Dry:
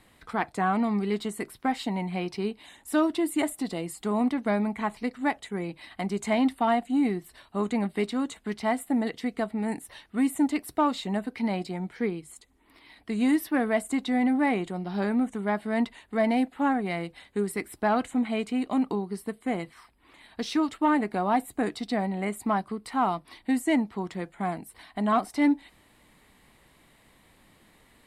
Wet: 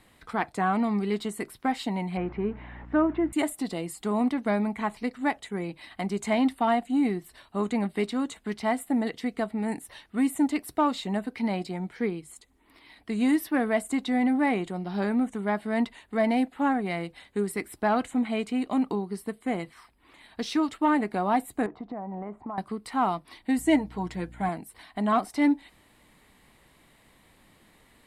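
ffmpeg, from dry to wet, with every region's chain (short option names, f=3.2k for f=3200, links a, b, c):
-filter_complex "[0:a]asettb=1/sr,asplit=3[a][b][c];[a]atrim=end=2.174[d];[b]atrim=start=2.17:end=3.33,asetpts=PTS-STARTPTS,afade=t=in:d=0.004:c=qsin,afade=t=out:st=1.156:d=0.004:c=qsin,aeval=exprs='val(0)+0.5*0.00891*sgn(val(0))':c=same,lowpass=f=2k:w=0.5412,lowpass=f=2k:w=1.3066,aeval=exprs='val(0)+0.00708*(sin(2*PI*60*n/s)+sin(2*PI*2*60*n/s)/2+sin(2*PI*3*60*n/s)/3+sin(2*PI*4*60*n/s)/4+sin(2*PI*5*60*n/s)/5)':c=same[e];[c]atrim=start=3.326[f];[d][e]acrossfade=d=0.004:c1=hsin:c2=qsin[g];[g][f]acrossfade=d=0.004:c1=qsin:c2=hsin,asettb=1/sr,asplit=3[h][i][j];[h]atrim=end=21.664[k];[i]atrim=start=21.66:end=22.58,asetpts=PTS-STARTPTS,afade=t=in:d=0.004:c=qsin,afade=t=out:st=0.916:d=0.004:c=qsin,lowpass=f=980:t=q:w=2.1,acompressor=threshold=-32dB:ratio=10:attack=3.2:release=140:knee=1:detection=peak[l];[j]atrim=start=22.576[m];[k][l]acrossfade=d=0.004:c1=hsin:c2=qsin[n];[n][m]acrossfade=d=0.004:c1=qsin:c2=hsin,asettb=1/sr,asplit=3[o][p][q];[o]atrim=end=23.584[r];[p]atrim=start=23.58:end=24.49,asetpts=PTS-STARTPTS,afade=t=in:d=0.004:c=qsin,afade=t=out:st=0.906:d=0.004:c=qsin,bandreject=f=1.2k:w=8.6,aecho=1:1:6.5:0.57,atrim=end_sample=40131,aeval=exprs='val(0)+0.00501*(sin(2*PI*60*n/s)+sin(2*PI*2*60*n/s)/2+sin(2*PI*3*60*n/s)/3+sin(2*PI*4*60*n/s)/4+sin(2*PI*5*60*n/s)/5)':c=same[s];[q]atrim=start=24.486[t];[r][s]acrossfade=d=0.004:c1=hsin:c2=qsin[u];[u][t]acrossfade=d=0.004:c1=qsin:c2=hsin"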